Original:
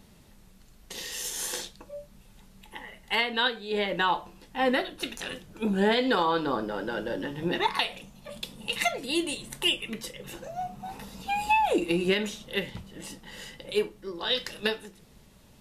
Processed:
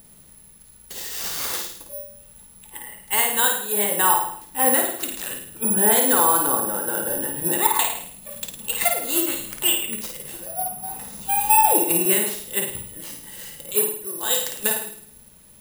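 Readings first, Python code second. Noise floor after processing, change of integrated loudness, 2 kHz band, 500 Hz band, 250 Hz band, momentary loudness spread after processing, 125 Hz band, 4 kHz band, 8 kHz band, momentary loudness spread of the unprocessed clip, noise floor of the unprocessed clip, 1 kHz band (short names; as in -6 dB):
-49 dBFS, +9.0 dB, +2.0 dB, +2.5 dB, +1.0 dB, 19 LU, 0.0 dB, +1.0 dB, +18.5 dB, 18 LU, -55 dBFS, +6.0 dB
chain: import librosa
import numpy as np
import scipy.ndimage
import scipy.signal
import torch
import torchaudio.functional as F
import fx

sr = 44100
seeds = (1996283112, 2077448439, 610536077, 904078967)

y = (np.kron(x[::4], np.eye(4)[0]) * 4)[:len(x)]
y = fx.room_flutter(y, sr, wall_m=9.2, rt60_s=0.63)
y = fx.dynamic_eq(y, sr, hz=920.0, q=0.97, threshold_db=-39.0, ratio=4.0, max_db=6)
y = F.gain(torch.from_numpy(y), -1.5).numpy()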